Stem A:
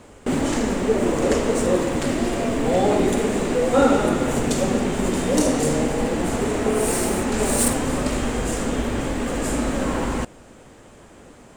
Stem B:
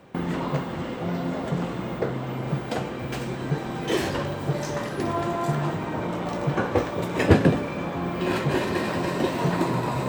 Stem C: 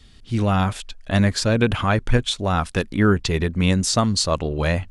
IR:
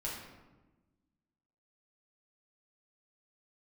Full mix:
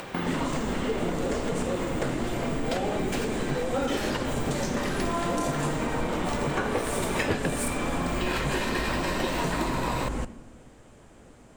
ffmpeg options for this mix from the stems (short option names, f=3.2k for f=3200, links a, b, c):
-filter_complex "[0:a]lowshelf=f=150:g=5.5,volume=-8.5dB,asplit=2[a][b];[b]volume=-14dB[c];[1:a]tiltshelf=f=820:g=-5,acompressor=mode=upward:threshold=-32dB:ratio=2.5,volume=2dB[d];[2:a]highpass=1k,acompressor=threshold=-41dB:ratio=2,volume=-14.5dB,asplit=2[e][f];[f]apad=whole_len=444797[g];[d][g]sidechaincompress=threshold=-48dB:ratio=8:attack=7.2:release=256[h];[3:a]atrim=start_sample=2205[i];[c][i]afir=irnorm=-1:irlink=0[j];[a][h][e][j]amix=inputs=4:normalize=0,acompressor=threshold=-24dB:ratio=5"